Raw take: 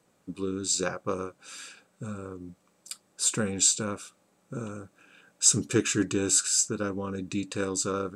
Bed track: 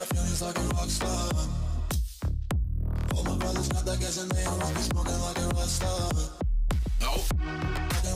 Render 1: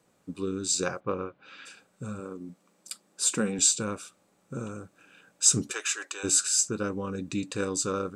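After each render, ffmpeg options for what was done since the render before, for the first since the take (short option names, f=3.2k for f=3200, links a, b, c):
-filter_complex "[0:a]asplit=3[a][b][c];[a]afade=t=out:st=0.99:d=0.02[d];[b]lowpass=f=3.4k:w=0.5412,lowpass=f=3.4k:w=1.3066,afade=t=in:st=0.99:d=0.02,afade=t=out:st=1.65:d=0.02[e];[c]afade=t=in:st=1.65:d=0.02[f];[d][e][f]amix=inputs=3:normalize=0,asettb=1/sr,asplit=3[g][h][i];[g]atrim=end=2.204[j];[h]atrim=start=2.2:end=3.59,asetpts=PTS-STARTPTS,afade=t=in:d=0.004:c=qsin,afade=t=out:st=1.386:d=0.004:c=qsin,lowshelf=f=140:t=q:w=1.5:g=-10[k];[i]atrim=start=3.586[l];[j][k]acrossfade=d=0.004:c1=hsin:c2=qsin[m];[m][l]acrossfade=d=0.004:c1=qsin:c2=hsin,asplit=3[n][o][p];[n]afade=t=out:st=5.71:d=0.02[q];[o]highpass=f=650:w=0.5412,highpass=f=650:w=1.3066,afade=t=in:st=5.71:d=0.02,afade=t=out:st=6.23:d=0.02[r];[p]afade=t=in:st=6.23:d=0.02[s];[q][r][s]amix=inputs=3:normalize=0"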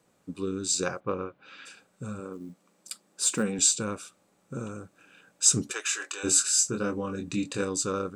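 -filter_complex "[0:a]asettb=1/sr,asplit=3[a][b][c];[a]atrim=end=2.334[d];[b]atrim=start=2.33:end=3.43,asetpts=PTS-STARTPTS,afade=t=in:d=0.004:c=qsin,afade=t=out:st=1.096:d=0.004:c=qsin,acrusher=bits=8:mode=log:mix=0:aa=0.000001[e];[c]atrim=start=3.426[f];[d][e]acrossfade=d=0.004:c1=hsin:c2=qsin[g];[g][f]acrossfade=d=0.004:c1=qsin:c2=hsin,asettb=1/sr,asplit=3[h][i][j];[h]atrim=end=5.904[k];[i]atrim=start=5.9:end=7.62,asetpts=PTS-STARTPTS,afade=t=in:d=0.004:c=qsin,afade=t=out:st=1.716:d=0.004:c=qsin,asplit=2[l][m];[m]adelay=24,volume=-5dB[n];[l][n]amix=inputs=2:normalize=0,atrim=end_sample=75852[o];[j]atrim=start=7.616[p];[k][o]acrossfade=d=0.004:c1=hsin:c2=qsin[q];[q][p]acrossfade=d=0.004:c1=qsin:c2=hsin"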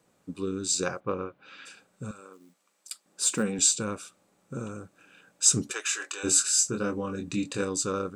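-filter_complex "[0:a]asettb=1/sr,asplit=3[a][b][c];[a]atrim=end=2.114[d];[b]atrim=start=2.11:end=3.06,asetpts=PTS-STARTPTS,afade=t=in:d=0.004:c=qsin,afade=t=out:st=0.946:d=0.004:c=qsin,highpass=f=1.4k:p=1[e];[c]atrim=start=3.056[f];[d][e]acrossfade=d=0.004:c1=hsin:c2=qsin[g];[g][f]acrossfade=d=0.004:c1=qsin:c2=hsin"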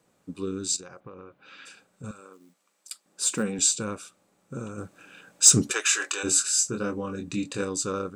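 -filter_complex "[0:a]asettb=1/sr,asplit=3[a][b][c];[a]atrim=end=0.764[d];[b]atrim=start=0.76:end=2.04,asetpts=PTS-STARTPTS,afade=t=in:d=0.004:c=qsin,afade=t=out:st=1.276:d=0.004:c=qsin,acompressor=threshold=-39dB:ratio=16:attack=3.2:release=140:knee=1:detection=peak[e];[c]atrim=start=2.036[f];[d][e]acrossfade=d=0.004:c1=hsin:c2=qsin[g];[g][f]acrossfade=d=0.004:c1=qsin:c2=hsin,asplit=3[h][i][j];[h]afade=t=out:st=4.77:d=0.02[k];[i]acontrast=64,afade=t=in:st=4.77:d=0.02,afade=t=out:st=6.22:d=0.02[l];[j]afade=t=in:st=6.22:d=0.02[m];[k][l][m]amix=inputs=3:normalize=0"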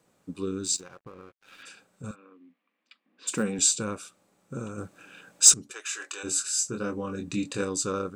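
-filter_complex "[0:a]asettb=1/sr,asplit=3[a][b][c];[a]atrim=end=0.654[d];[b]atrim=start=0.65:end=1.63,asetpts=PTS-STARTPTS,afade=t=in:d=0.004:c=qsin,afade=t=out:st=0.976:d=0.004:c=qsin,aeval=exprs='sgn(val(0))*max(abs(val(0))-0.00178,0)':c=same[e];[c]atrim=start=1.626[f];[d][e]acrossfade=d=0.004:c1=hsin:c2=qsin[g];[g][f]acrossfade=d=0.004:c1=qsin:c2=hsin,asplit=3[h][i][j];[h]afade=t=out:st=2.14:d=0.02[k];[i]highpass=f=230:w=0.5412,highpass=f=230:w=1.3066,equalizer=f=240:t=q:w=4:g=9,equalizer=f=390:t=q:w=4:g=-9,equalizer=f=590:t=q:w=4:g=-9,equalizer=f=860:t=q:w=4:g=-9,equalizer=f=1.4k:t=q:w=4:g=-10,lowpass=f=2.7k:w=0.5412,lowpass=f=2.7k:w=1.3066,afade=t=in:st=2.14:d=0.02,afade=t=out:st=3.27:d=0.02[l];[j]afade=t=in:st=3.27:d=0.02[m];[k][l][m]amix=inputs=3:normalize=0,asplit=2[n][o];[n]atrim=end=5.54,asetpts=PTS-STARTPTS,afade=t=out:st=5.536:d=0.004:c=hsin:silence=0.0891251[p];[o]atrim=start=5.54,asetpts=PTS-STARTPTS,afade=t=in:d=1.68:silence=0.0891251[q];[p][q]concat=n=2:v=0:a=1"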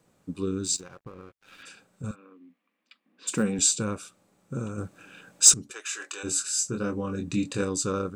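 -af "lowshelf=f=180:g=7.5"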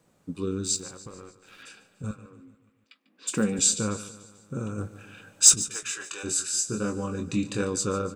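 -filter_complex "[0:a]asplit=2[a][b];[b]adelay=19,volume=-13dB[c];[a][c]amix=inputs=2:normalize=0,aecho=1:1:146|292|438|584|730:0.158|0.084|0.0445|0.0236|0.0125"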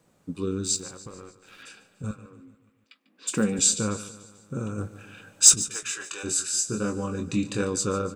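-af "volume=1dB"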